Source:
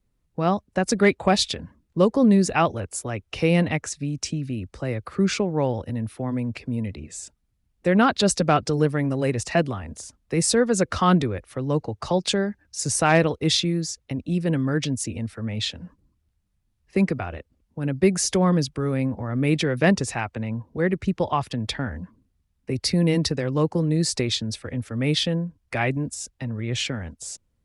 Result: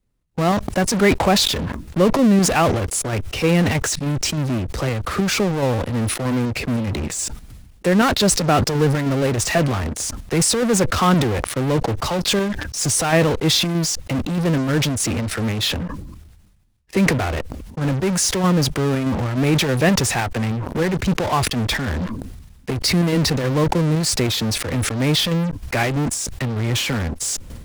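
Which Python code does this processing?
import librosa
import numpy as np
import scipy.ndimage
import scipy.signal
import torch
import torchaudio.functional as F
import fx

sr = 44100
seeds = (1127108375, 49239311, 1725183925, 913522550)

p1 = fx.chopper(x, sr, hz=3.2, depth_pct=60, duty_pct=65)
p2 = fx.fuzz(p1, sr, gain_db=46.0, gate_db=-54.0)
p3 = p1 + (p2 * 10.0 ** (-11.0 / 20.0))
y = fx.sustainer(p3, sr, db_per_s=45.0)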